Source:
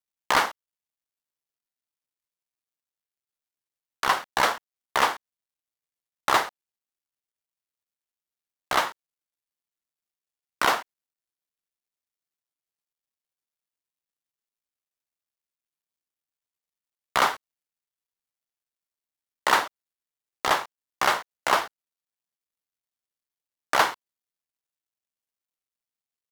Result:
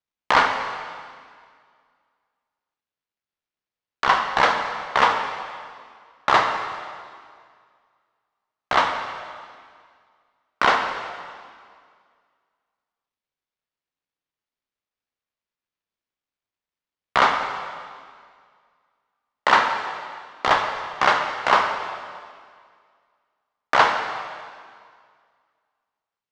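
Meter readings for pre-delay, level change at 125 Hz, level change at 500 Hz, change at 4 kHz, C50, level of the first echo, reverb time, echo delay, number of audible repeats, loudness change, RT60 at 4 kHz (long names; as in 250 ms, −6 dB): 11 ms, +6.0 dB, +5.0 dB, +2.5 dB, 5.5 dB, no echo audible, 2.0 s, no echo audible, no echo audible, +3.5 dB, 1.9 s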